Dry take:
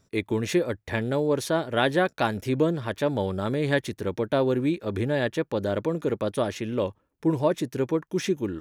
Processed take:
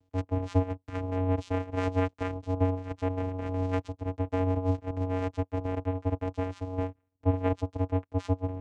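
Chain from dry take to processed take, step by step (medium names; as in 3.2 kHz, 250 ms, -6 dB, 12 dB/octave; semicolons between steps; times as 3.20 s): ring modulator 180 Hz; vocoder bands 4, square 92.7 Hz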